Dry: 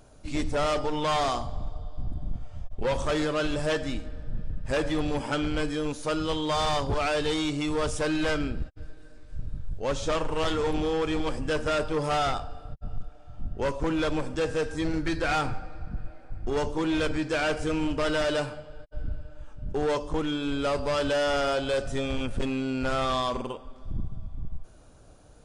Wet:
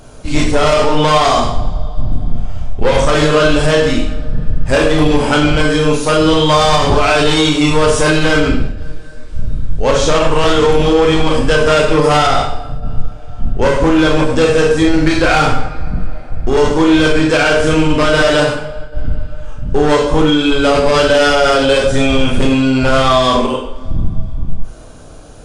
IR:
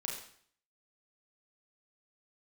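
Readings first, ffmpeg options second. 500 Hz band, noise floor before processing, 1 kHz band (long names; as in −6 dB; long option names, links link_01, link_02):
+16.0 dB, −49 dBFS, +15.5 dB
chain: -filter_complex "[1:a]atrim=start_sample=2205,asetrate=48510,aresample=44100[link_01];[0:a][link_01]afir=irnorm=-1:irlink=0,alimiter=level_in=19dB:limit=-1dB:release=50:level=0:latency=1,volume=-1dB"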